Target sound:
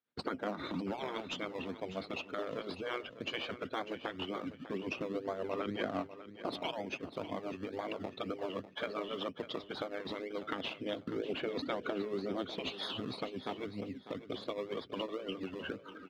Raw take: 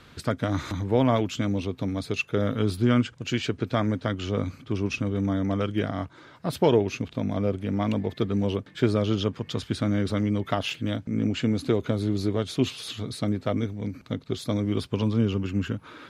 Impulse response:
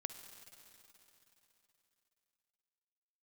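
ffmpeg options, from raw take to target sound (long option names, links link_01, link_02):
-filter_complex "[0:a]agate=range=-19dB:threshold=-44dB:ratio=16:detection=peak,afftdn=noise_reduction=26:noise_floor=-39,afftfilt=real='re*lt(hypot(re,im),0.251)':imag='im*lt(hypot(re,im),0.251)':win_size=1024:overlap=0.75,highshelf=frequency=2500:gain=4,asplit=2[link_01][link_02];[link_02]acrusher=samples=23:mix=1:aa=0.000001:lfo=1:lforange=13.8:lforate=2,volume=-5.5dB[link_03];[link_01][link_03]amix=inputs=2:normalize=0,acrossover=split=200 4600:gain=0.112 1 0.112[link_04][link_05][link_06];[link_04][link_05][link_06]amix=inputs=3:normalize=0,tremolo=f=7.3:d=0.56,acompressor=threshold=-41dB:ratio=4,aphaser=in_gain=1:out_gain=1:delay=1.8:decay=0.27:speed=0.17:type=sinusoidal,aecho=1:1:598|1196|1794:0.211|0.0592|0.0166,volume=4dB"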